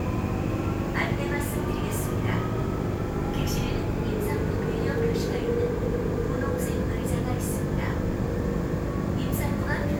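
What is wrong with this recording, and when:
hum 50 Hz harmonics 7 -32 dBFS

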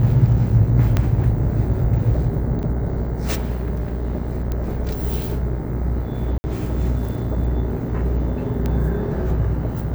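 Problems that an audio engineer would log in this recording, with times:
buzz 60 Hz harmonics 36 -25 dBFS
0.97 pop -6 dBFS
2.63 gap 4.5 ms
4.52 pop -13 dBFS
6.38–6.44 gap 60 ms
8.66 pop -12 dBFS

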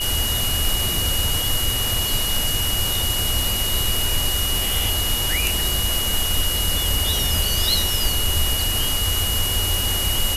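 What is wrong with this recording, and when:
tone 2900 Hz -24 dBFS

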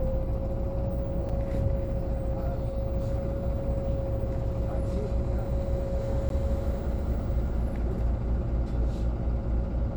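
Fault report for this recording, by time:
buzz 60 Hz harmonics 15 -33 dBFS
1.29–1.3 gap 5.5 ms
6.29–6.3 gap 12 ms

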